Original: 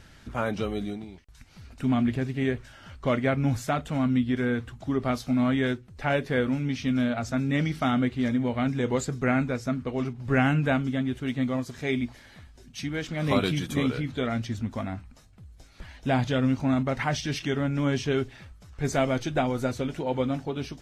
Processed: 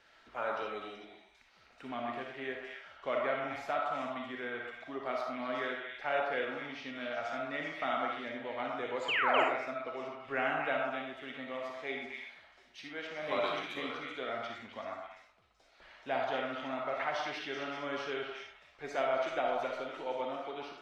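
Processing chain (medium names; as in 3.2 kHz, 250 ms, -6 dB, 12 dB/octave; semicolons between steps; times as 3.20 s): dynamic bell 7.7 kHz, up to -5 dB, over -51 dBFS, Q 0.85; painted sound fall, 9.08–9.44 s, 290–3300 Hz -24 dBFS; three-band isolator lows -24 dB, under 380 Hz, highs -16 dB, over 4.9 kHz; repeats whose band climbs or falls 127 ms, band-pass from 1 kHz, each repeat 1.4 oct, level 0 dB; algorithmic reverb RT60 0.42 s, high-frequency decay 0.6×, pre-delay 15 ms, DRR 1.5 dB; trim -7.5 dB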